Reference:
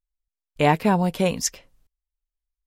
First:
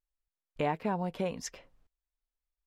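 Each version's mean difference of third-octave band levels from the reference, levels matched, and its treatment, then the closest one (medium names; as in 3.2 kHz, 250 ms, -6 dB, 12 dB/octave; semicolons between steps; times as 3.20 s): 4.0 dB: low-pass 1.4 kHz 6 dB/octave; bass shelf 290 Hz -7.5 dB; compression 2:1, threshold -39 dBFS, peak gain reduction 13 dB; trim +2 dB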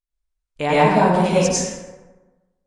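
11.0 dB: peaking EQ 95 Hz -4 dB 2.3 oct; plate-style reverb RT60 1.2 s, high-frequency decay 0.5×, pre-delay 85 ms, DRR -9.5 dB; resampled via 22.05 kHz; trim -4 dB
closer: first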